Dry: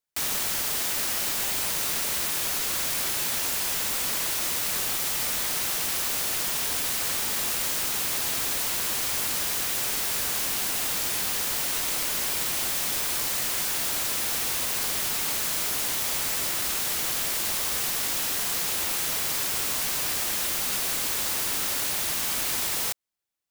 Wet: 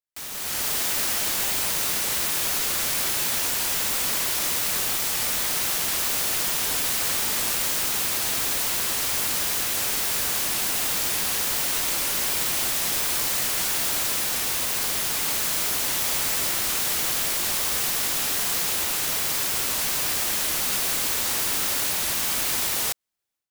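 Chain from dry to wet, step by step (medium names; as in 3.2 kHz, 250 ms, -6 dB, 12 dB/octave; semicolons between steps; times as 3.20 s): level rider gain up to 13 dB; warped record 78 rpm, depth 100 cents; trim -9 dB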